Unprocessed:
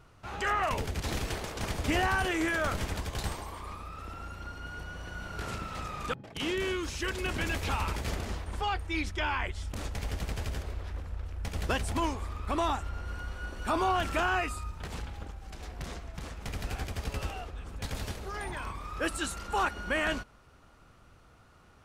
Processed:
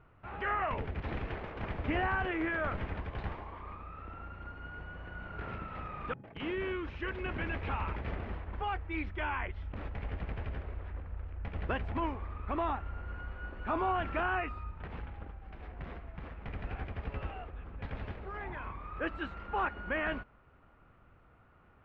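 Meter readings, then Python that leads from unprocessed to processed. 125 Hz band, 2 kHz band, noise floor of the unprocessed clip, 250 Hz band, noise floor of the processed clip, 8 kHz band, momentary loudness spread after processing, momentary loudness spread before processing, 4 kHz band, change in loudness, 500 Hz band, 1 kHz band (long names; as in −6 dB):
−3.5 dB, −4.0 dB, −58 dBFS, −3.5 dB, −62 dBFS, below −35 dB, 13 LU, 13 LU, −12.0 dB, −4.0 dB, −3.5 dB, −3.5 dB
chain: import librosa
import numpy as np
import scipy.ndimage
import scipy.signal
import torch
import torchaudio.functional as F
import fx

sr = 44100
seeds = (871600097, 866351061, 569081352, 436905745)

y = scipy.signal.sosfilt(scipy.signal.butter(4, 2500.0, 'lowpass', fs=sr, output='sos'), x)
y = y * 10.0 ** (-3.5 / 20.0)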